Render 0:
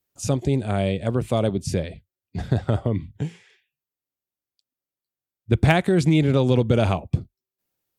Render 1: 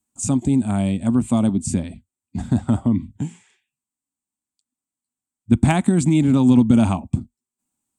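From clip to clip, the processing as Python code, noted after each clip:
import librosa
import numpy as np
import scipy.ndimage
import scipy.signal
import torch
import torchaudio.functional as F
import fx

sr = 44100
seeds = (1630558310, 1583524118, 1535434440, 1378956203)

y = fx.curve_eq(x, sr, hz=(160.0, 240.0, 460.0, 910.0, 1800.0, 2500.0, 5300.0, 8100.0, 12000.0), db=(0, 13, -12, 4, -6, -3, -5, 14, -7))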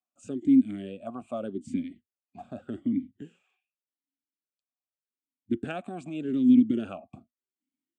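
y = fx.vowel_sweep(x, sr, vowels='a-i', hz=0.84)
y = F.gain(torch.from_numpy(y), 1.0).numpy()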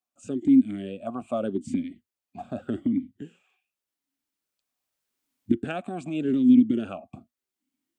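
y = fx.recorder_agc(x, sr, target_db=-19.5, rise_db_per_s=5.5, max_gain_db=30)
y = F.gain(torch.from_numpy(y), 2.0).numpy()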